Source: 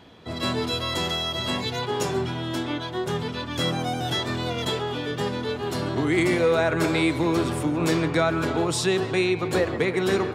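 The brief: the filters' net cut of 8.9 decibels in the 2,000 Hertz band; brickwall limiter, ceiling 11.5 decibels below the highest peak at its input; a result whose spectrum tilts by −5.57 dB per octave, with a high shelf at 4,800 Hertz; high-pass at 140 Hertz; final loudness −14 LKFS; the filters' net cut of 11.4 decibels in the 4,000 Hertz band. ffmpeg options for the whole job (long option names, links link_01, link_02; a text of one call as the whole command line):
ffmpeg -i in.wav -af "highpass=140,equalizer=frequency=2000:width_type=o:gain=-8.5,equalizer=frequency=4000:width_type=o:gain=-9,highshelf=frequency=4800:gain=-5,volume=18.5dB,alimiter=limit=-6dB:level=0:latency=1" out.wav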